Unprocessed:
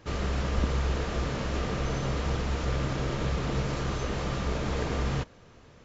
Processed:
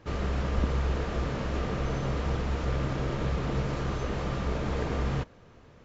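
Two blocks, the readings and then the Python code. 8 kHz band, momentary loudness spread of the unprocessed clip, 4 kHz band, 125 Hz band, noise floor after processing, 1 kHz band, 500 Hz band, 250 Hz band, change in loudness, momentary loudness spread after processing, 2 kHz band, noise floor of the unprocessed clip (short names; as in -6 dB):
n/a, 3 LU, -4.0 dB, 0.0 dB, -54 dBFS, -0.5 dB, 0.0 dB, 0.0 dB, -0.5 dB, 3 LU, -2.0 dB, -54 dBFS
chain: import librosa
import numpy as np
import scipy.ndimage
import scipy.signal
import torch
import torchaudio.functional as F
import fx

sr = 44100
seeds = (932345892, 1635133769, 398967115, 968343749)

y = fx.high_shelf(x, sr, hz=3400.0, db=-8.0)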